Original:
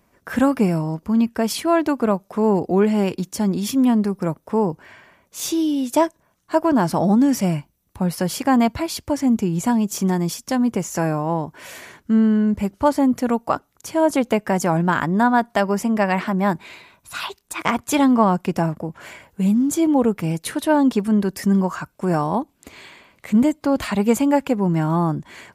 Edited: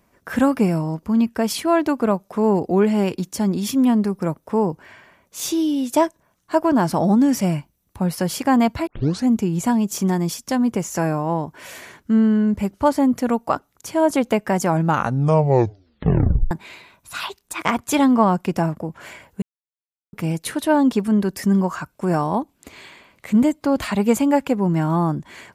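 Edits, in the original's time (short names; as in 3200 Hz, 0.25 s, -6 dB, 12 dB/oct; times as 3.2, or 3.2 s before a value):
8.87 tape start 0.40 s
14.73 tape stop 1.78 s
19.42–20.13 mute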